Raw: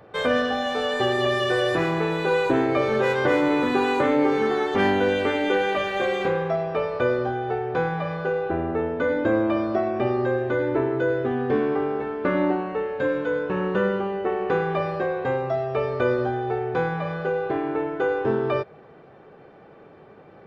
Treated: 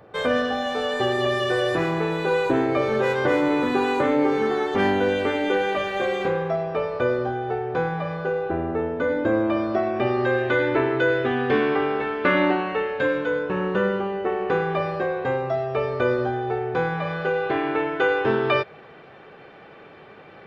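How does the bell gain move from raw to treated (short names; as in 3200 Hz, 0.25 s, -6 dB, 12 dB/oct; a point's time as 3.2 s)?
bell 2900 Hz 2.4 oct
9.27 s -1 dB
10.09 s +6 dB
10.4 s +12.5 dB
12.68 s +12.5 dB
13.49 s +2 dB
16.78 s +2 dB
17.66 s +12 dB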